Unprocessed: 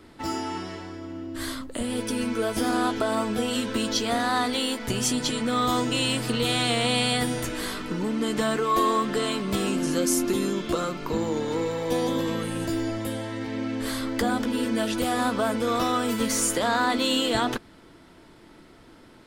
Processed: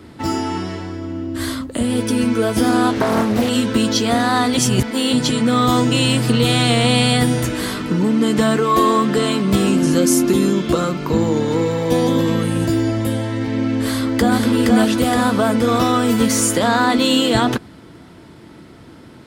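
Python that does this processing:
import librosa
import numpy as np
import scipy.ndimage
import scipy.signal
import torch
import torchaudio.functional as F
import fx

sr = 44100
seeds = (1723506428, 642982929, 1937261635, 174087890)

y = fx.doppler_dist(x, sr, depth_ms=0.59, at=(2.92, 3.49))
y = fx.echo_throw(y, sr, start_s=13.84, length_s=0.53, ms=470, feedback_pct=55, wet_db=-2.5)
y = fx.edit(y, sr, fx.reverse_span(start_s=4.57, length_s=0.56), tone=tone)
y = scipy.signal.sosfilt(scipy.signal.butter(2, 50.0, 'highpass', fs=sr, output='sos'), y)
y = fx.peak_eq(y, sr, hz=120.0, db=8.0, octaves=2.3)
y = y * 10.0 ** (6.5 / 20.0)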